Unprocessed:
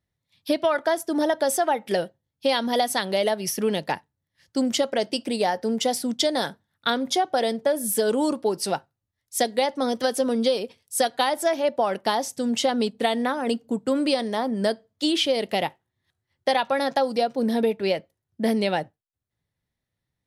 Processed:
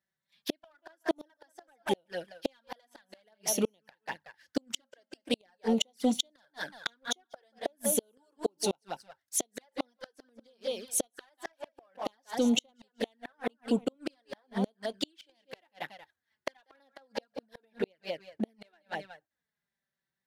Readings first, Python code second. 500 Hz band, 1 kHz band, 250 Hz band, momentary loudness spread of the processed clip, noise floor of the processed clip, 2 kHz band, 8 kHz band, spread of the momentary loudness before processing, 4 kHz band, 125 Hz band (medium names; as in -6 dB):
-13.5 dB, -17.0 dB, -9.0 dB, 18 LU, under -85 dBFS, -12.0 dB, -4.5 dB, 6 LU, -10.5 dB, -8.0 dB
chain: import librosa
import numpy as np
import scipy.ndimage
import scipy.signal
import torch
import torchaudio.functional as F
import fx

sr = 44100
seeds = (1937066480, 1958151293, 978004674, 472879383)

y = fx.graphic_eq_31(x, sr, hz=(400, 1600, 10000), db=(-3, 10, -4))
y = fx.echo_feedback(y, sr, ms=185, feedback_pct=19, wet_db=-11.5)
y = fx.gate_flip(y, sr, shuts_db=-15.0, range_db=-37)
y = fx.highpass(y, sr, hz=310.0, slope=6)
y = fx.leveller(y, sr, passes=1)
y = fx.env_flanger(y, sr, rest_ms=5.2, full_db=-28.5)